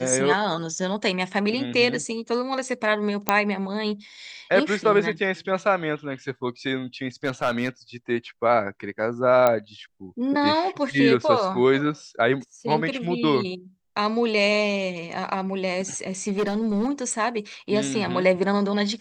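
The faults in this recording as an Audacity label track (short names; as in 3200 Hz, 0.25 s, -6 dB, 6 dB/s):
3.290000	3.290000	pop -3 dBFS
7.240000	7.690000	clipped -16.5 dBFS
9.470000	9.470000	pop -7 dBFS
16.270000	16.910000	clipped -19.5 dBFS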